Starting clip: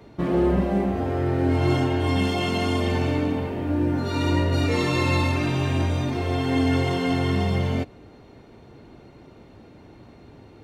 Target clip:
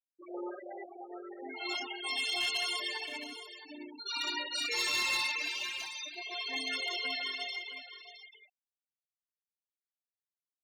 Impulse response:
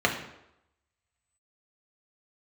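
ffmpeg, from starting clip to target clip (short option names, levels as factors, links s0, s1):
-af "highpass=f=280:w=0.5412,highpass=f=280:w=1.3066,aderivative,afftfilt=real='re*gte(hypot(re,im),0.0158)':imag='im*gte(hypot(re,im),0.0158)':win_size=1024:overlap=0.75,asoftclip=type=hard:threshold=0.0178,aecho=1:1:667:0.237,volume=2.51"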